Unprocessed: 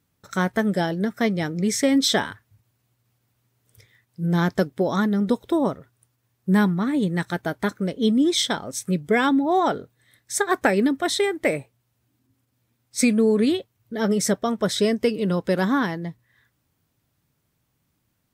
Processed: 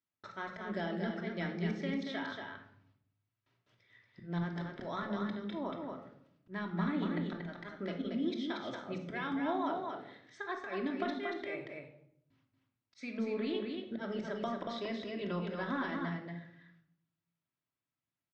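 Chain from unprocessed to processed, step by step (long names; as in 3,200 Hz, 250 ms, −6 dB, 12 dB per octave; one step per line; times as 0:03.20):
noise gate with hold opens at −58 dBFS
spectral tilt +3.5 dB per octave
volume swells 409 ms
downward compressor 6 to 1, threshold −36 dBFS, peak gain reduction 16.5 dB
Gaussian smoothing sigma 2.6 samples
single-tap delay 233 ms −4.5 dB
on a send at −2.5 dB: convolution reverb RT60 0.70 s, pre-delay 3 ms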